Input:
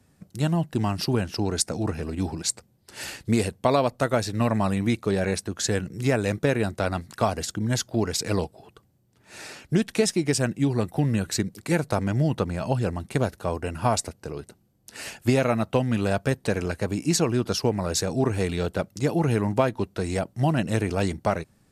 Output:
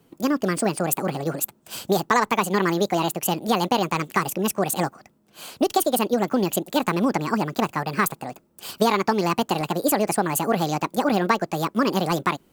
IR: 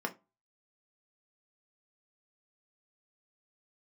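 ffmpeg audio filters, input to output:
-af "asetrate=76440,aresample=44100,volume=2dB"

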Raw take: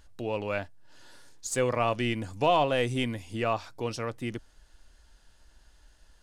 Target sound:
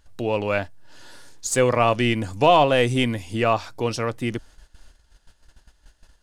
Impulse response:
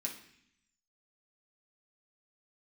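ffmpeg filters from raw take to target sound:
-af "agate=range=-11dB:threshold=-54dB:ratio=16:detection=peak,volume=8dB"

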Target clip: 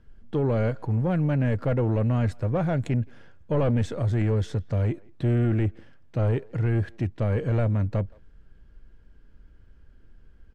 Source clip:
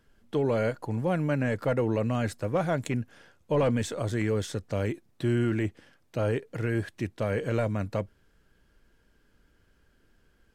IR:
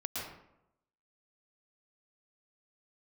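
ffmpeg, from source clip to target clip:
-filter_complex "[0:a]aemphasis=mode=reproduction:type=bsi,asoftclip=type=tanh:threshold=-16.5dB,asplit=2[link_01][link_02];[link_02]adelay=170,highpass=300,lowpass=3400,asoftclip=type=hard:threshold=-25.5dB,volume=-24dB[link_03];[link_01][link_03]amix=inputs=2:normalize=0"

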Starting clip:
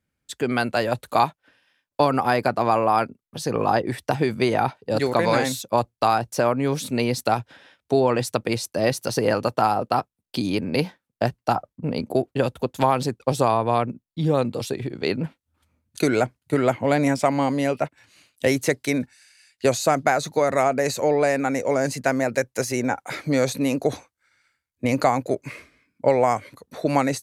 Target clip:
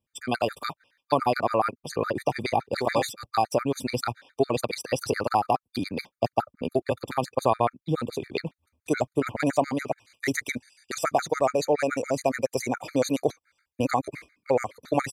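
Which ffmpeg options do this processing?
ffmpeg -i in.wav -af "atempo=1.8,equalizer=frequency=170:width=1.2:gain=-4.5,afftfilt=real='re*gt(sin(2*PI*7.1*pts/sr)*(1-2*mod(floor(b*sr/1024/1200),2)),0)':imag='im*gt(sin(2*PI*7.1*pts/sr)*(1-2*mod(floor(b*sr/1024/1200),2)),0)':win_size=1024:overlap=0.75" out.wav

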